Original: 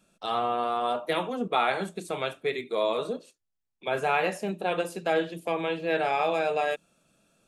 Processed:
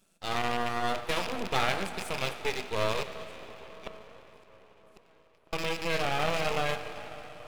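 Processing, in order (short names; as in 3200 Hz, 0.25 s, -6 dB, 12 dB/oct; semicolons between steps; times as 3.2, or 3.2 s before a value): rattling part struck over -41 dBFS, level -21 dBFS; 3.02–5.53 flipped gate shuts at -22 dBFS, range -38 dB; reverb RT60 5.4 s, pre-delay 15 ms, DRR 8.5 dB; half-wave rectifier; high shelf 4700 Hz +6 dB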